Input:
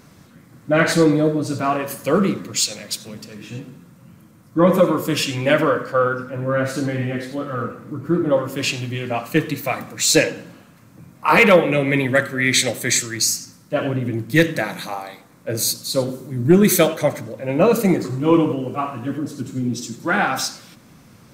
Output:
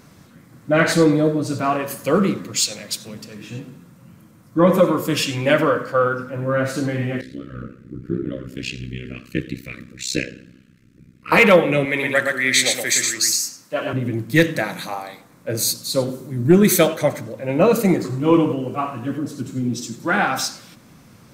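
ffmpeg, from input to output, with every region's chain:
-filter_complex "[0:a]asettb=1/sr,asplit=3[a][b][c];[a]atrim=end=7.214[d];[b]atrim=start=7.21:end=11.32,asetpts=PTS-STARTPTS,afade=t=in:d=0.004:c=qsin,afade=t=out:st=4.106:d=0.004:c=qsin,asuperstop=centerf=820:order=4:qfactor=0.58,aemphasis=mode=reproduction:type=50kf,tremolo=f=64:d=0.919[e];[c]atrim=start=11.316[f];[d][e]acrossfade=d=0.004:c1=hsin:c2=qsin[g];[g][f]acrossfade=d=0.004:c1=qsin:c2=hsin,asettb=1/sr,asplit=3[h][i][j];[h]atrim=end=11.854[k];[i]atrim=start=11.85:end=13.93,asetpts=PTS-STARTPTS,afade=t=in:d=0.004:c=qsin,afade=t=out:st=2.076:d=0.004:c=qsin,highpass=f=530:p=1,aecho=1:1:117:0.668,atrim=end_sample=91728[l];[j]atrim=start=13.926[m];[k][l]acrossfade=d=0.004:c1=hsin:c2=qsin[n];[n][m]acrossfade=d=0.004:c1=qsin:c2=hsin"

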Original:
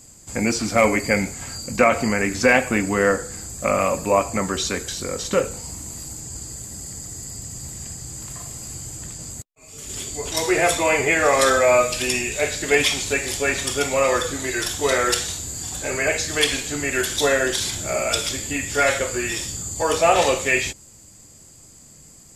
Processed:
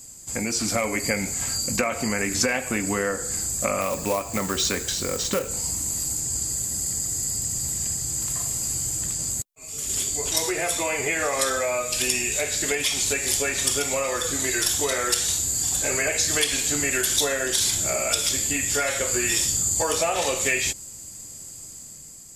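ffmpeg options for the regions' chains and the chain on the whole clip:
-filter_complex "[0:a]asettb=1/sr,asplit=3[a][b][c];[a]atrim=end=3.814[d];[b]atrim=start=3.81:end=5.49,asetpts=PTS-STARTPTS,afade=t=in:d=0.004:c=qsin,afade=t=out:st=1.676:d=0.004:c=qsin,equalizer=f=12k:t=o:w=1.6:g=-7.5,acrusher=bits=4:mode=log:mix=0:aa=0.000001[e];[c]atrim=start=5.486[f];[d][e]acrossfade=d=0.004:c1=hsin:c2=qsin[g];[g][f]acrossfade=d=0.004:c1=qsin:c2=hsin,acompressor=threshold=-22dB:ratio=6,highshelf=f=4.8k:g=11,dynaudnorm=f=140:g=9:m=4dB,volume=-3.5dB"

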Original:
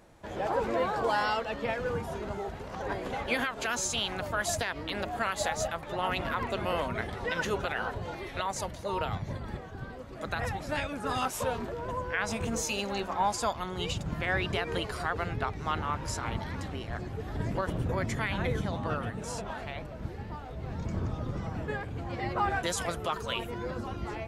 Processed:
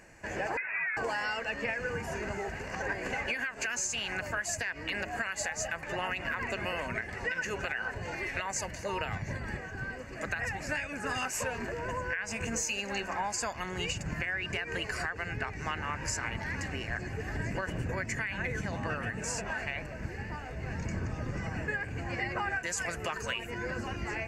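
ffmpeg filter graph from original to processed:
-filter_complex "[0:a]asettb=1/sr,asplit=3[a][b][c];[a]atrim=end=0.574[d];[b]atrim=start=0.57:end=0.97,asetpts=PTS-STARTPTS,afade=t=in:d=0.004:c=qsin,afade=t=out:st=0.396:d=0.004:c=qsin,highpass=1.3k,lowpass=f=2.6k:t=q:w=0.5098,lowpass=f=2.6k:t=q:w=0.6013,lowpass=f=2.6k:t=q:w=0.9,lowpass=f=2.6k:t=q:w=2.563,afreqshift=-3000[e];[c]atrim=start=0.966[f];[d][e]acrossfade=d=0.004:c1=hsin:c2=qsin[g];[g][f]acrossfade=d=0.004:c1=qsin:c2=hsin,superequalizer=11b=3.55:12b=2.82:13b=0.447:14b=1.78:15b=2.82,alimiter=limit=-16.5dB:level=0:latency=1:release=470,acompressor=threshold=-30dB:ratio=6"

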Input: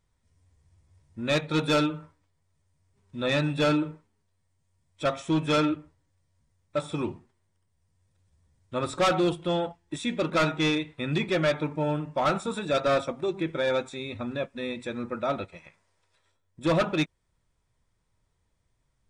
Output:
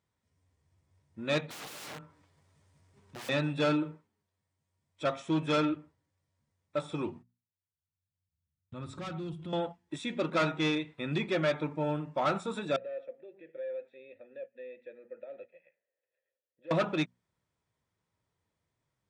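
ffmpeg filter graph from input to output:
-filter_complex "[0:a]asettb=1/sr,asplit=3[a][b][c];[a]atrim=end=1.504[d];[b]atrim=start=1.5:end=3.29,asetpts=PTS-STARTPTS,afade=t=in:d=0.004:c=qsin,afade=t=out:st=1.786:d=0.004:c=qsin,aeval=exprs='(mod(47.3*val(0)+1,2)-1)/47.3':c=same,acompressor=mode=upward:threshold=-43dB:ratio=2.5:attack=3.2:release=140:knee=2.83:detection=peak[e];[c]atrim=start=3.286[f];[d][e]acrossfade=d=0.004:c1=hsin:c2=qsin[g];[g][f]acrossfade=d=0.004:c1=qsin:c2=hsin,asettb=1/sr,asplit=3[h][i][j];[h]atrim=end=7.104[k];[i]atrim=start=7.1:end=9.53,asetpts=PTS-STARTPTS,afade=t=in:d=0.004:c=qsin,afade=t=out:st=2.426:d=0.004:c=qsin,agate=range=-23dB:threshold=-55dB:ratio=16:release=100:detection=peak,asubboost=boost=11.5:cutoff=190,acompressor=threshold=-37dB:ratio=2.5:attack=3.2:release=140:knee=1:detection=peak[l];[j]atrim=start=9.526[m];[k][l]acrossfade=d=0.004:c1=hsin:c2=qsin[n];[n][m]acrossfade=d=0.004:c1=qsin:c2=hsin,asettb=1/sr,asplit=3[o][p][q];[o]atrim=end=12.764[r];[p]atrim=start=12.76:end=16.71,asetpts=PTS-STARTPTS,afade=t=in:d=0.004:c=qsin,afade=t=out:st=3.946:d=0.004:c=qsin,acompressor=threshold=-28dB:ratio=6:attack=3.2:release=140:knee=1:detection=peak,asplit=3[s][t][u];[s]bandpass=f=530:t=q:w=8,volume=0dB[v];[t]bandpass=f=1.84k:t=q:w=8,volume=-6dB[w];[u]bandpass=f=2.48k:t=q:w=8,volume=-9dB[x];[v][w][x]amix=inputs=3:normalize=0,equalizer=f=7.4k:w=0.78:g=-14.5[y];[q]atrim=start=16.706[z];[r][y]acrossfade=d=0.004:c1=hsin:c2=qsin[aa];[aa][z]acrossfade=d=0.004:c1=qsin:c2=hsin,highpass=110,highshelf=f=7.4k:g=-8.5,bandreject=f=60:t=h:w=6,bandreject=f=120:t=h:w=6,bandreject=f=180:t=h:w=6,bandreject=f=240:t=h:w=6,volume=-4dB"

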